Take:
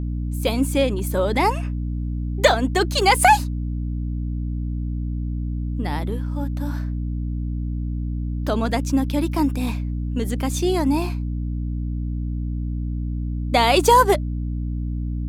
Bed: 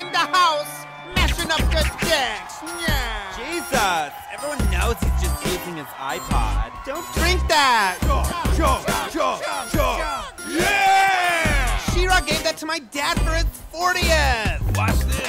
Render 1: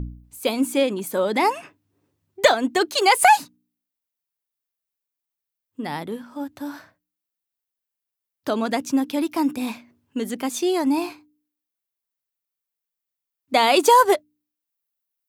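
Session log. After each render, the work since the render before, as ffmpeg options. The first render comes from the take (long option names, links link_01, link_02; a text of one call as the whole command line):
ffmpeg -i in.wav -af "bandreject=frequency=60:width_type=h:width=4,bandreject=frequency=120:width_type=h:width=4,bandreject=frequency=180:width_type=h:width=4,bandreject=frequency=240:width_type=h:width=4,bandreject=frequency=300:width_type=h:width=4" out.wav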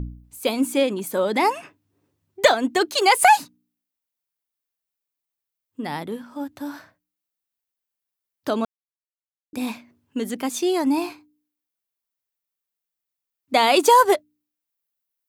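ffmpeg -i in.wav -filter_complex "[0:a]asplit=3[link_01][link_02][link_03];[link_01]atrim=end=8.65,asetpts=PTS-STARTPTS,afade=type=out:start_time=8.646:duration=0.004:curve=hsin[link_04];[link_02]atrim=start=8.65:end=9.53,asetpts=PTS-STARTPTS,volume=0[link_05];[link_03]atrim=start=9.53,asetpts=PTS-STARTPTS,afade=type=in:duration=0.004:curve=hsin[link_06];[link_04][link_05][link_06]concat=n=3:v=0:a=1" out.wav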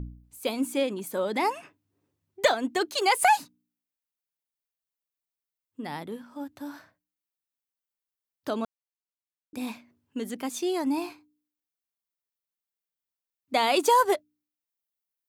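ffmpeg -i in.wav -af "volume=-6.5dB" out.wav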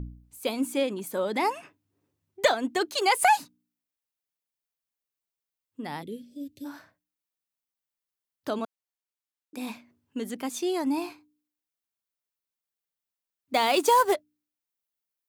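ffmpeg -i in.wav -filter_complex "[0:a]asplit=3[link_01][link_02][link_03];[link_01]afade=type=out:start_time=6.01:duration=0.02[link_04];[link_02]asuperstop=centerf=1100:order=8:qfactor=0.58,afade=type=in:start_time=6.01:duration=0.02,afade=type=out:start_time=6.64:duration=0.02[link_05];[link_03]afade=type=in:start_time=6.64:duration=0.02[link_06];[link_04][link_05][link_06]amix=inputs=3:normalize=0,asplit=3[link_07][link_08][link_09];[link_07]afade=type=out:start_time=8.58:duration=0.02[link_10];[link_08]highpass=220,afade=type=in:start_time=8.58:duration=0.02,afade=type=out:start_time=9.68:duration=0.02[link_11];[link_09]afade=type=in:start_time=9.68:duration=0.02[link_12];[link_10][link_11][link_12]amix=inputs=3:normalize=0,asettb=1/sr,asplit=3[link_13][link_14][link_15];[link_13]atrim=end=13.544[link_16];[link_14]atrim=start=13.54:end=14.14,asetpts=PTS-STARTPTS,afade=type=in:duration=0.004:curve=qsin,afade=type=out:start_time=0.596:duration=0.004:curve=qsin,acrusher=bits=5:mode=log:mix=0:aa=0.000001[link_17];[link_15]atrim=start=14.136[link_18];[link_16][link_17]acrossfade=duration=0.004:curve1=hsin:curve2=qsin[link_19];[link_19][link_18]acrossfade=duration=0.004:curve1=qsin:curve2=hsin" out.wav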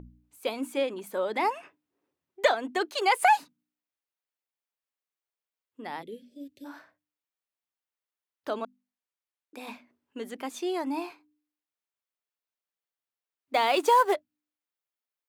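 ffmpeg -i in.wav -af "bass=frequency=250:gain=-12,treble=frequency=4000:gain=-8,bandreject=frequency=50:width_type=h:width=6,bandreject=frequency=100:width_type=h:width=6,bandreject=frequency=150:width_type=h:width=6,bandreject=frequency=200:width_type=h:width=6,bandreject=frequency=250:width_type=h:width=6,bandreject=frequency=300:width_type=h:width=6" out.wav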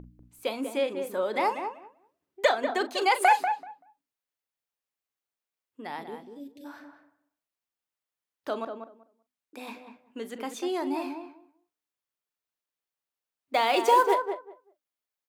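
ffmpeg -i in.wav -filter_complex "[0:a]asplit=2[link_01][link_02];[link_02]adelay=40,volume=-13.5dB[link_03];[link_01][link_03]amix=inputs=2:normalize=0,asplit=2[link_04][link_05];[link_05]adelay=192,lowpass=frequency=1300:poles=1,volume=-6dB,asplit=2[link_06][link_07];[link_07]adelay=192,lowpass=frequency=1300:poles=1,volume=0.18,asplit=2[link_08][link_09];[link_09]adelay=192,lowpass=frequency=1300:poles=1,volume=0.18[link_10];[link_04][link_06][link_08][link_10]amix=inputs=4:normalize=0" out.wav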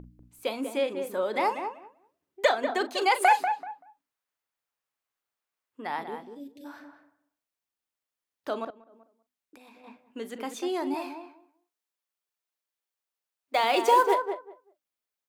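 ffmpeg -i in.wav -filter_complex "[0:a]asettb=1/sr,asplit=3[link_01][link_02][link_03];[link_01]atrim=end=3.604[link_04];[link_02]atrim=start=3.6:end=6.35,asetpts=PTS-STARTPTS,afade=type=in:duration=0.004:curve=qsin,afade=type=out:start_time=2.746:duration=0.004:curve=qsin,equalizer=frequency=1200:width=0.73:gain=6.5[link_05];[link_03]atrim=start=6.346[link_06];[link_04][link_05]acrossfade=duration=0.004:curve1=hsin:curve2=qsin[link_07];[link_07][link_06]acrossfade=duration=0.004:curve1=qsin:curve2=hsin,asettb=1/sr,asplit=3[link_08][link_09][link_10];[link_08]atrim=end=8.704[link_11];[link_09]atrim=start=8.7:end=9.84,asetpts=PTS-STARTPTS,afade=type=in:duration=0.004:curve=qsin,afade=type=out:start_time=1.136:duration=0.004:curve=qsin,acompressor=threshold=-49dB:ratio=16:attack=3.2:release=140:knee=1:detection=peak[link_12];[link_10]atrim=start=9.836[link_13];[link_11][link_12]acrossfade=duration=0.004:curve1=hsin:curve2=qsin[link_14];[link_14][link_13]acrossfade=duration=0.004:curve1=qsin:curve2=hsin,asettb=1/sr,asplit=3[link_15][link_16][link_17];[link_15]atrim=end=10.944[link_18];[link_16]atrim=start=10.94:end=13.64,asetpts=PTS-STARTPTS,afade=type=in:duration=0.004:curve=qsin,afade=type=out:start_time=2.696:duration=0.004:curve=qsin,bass=frequency=250:gain=-14,treble=frequency=4000:gain=1[link_19];[link_17]atrim=start=13.636[link_20];[link_18][link_19]acrossfade=duration=0.004:curve1=hsin:curve2=qsin[link_21];[link_21][link_20]acrossfade=duration=0.004:curve1=qsin:curve2=hsin" out.wav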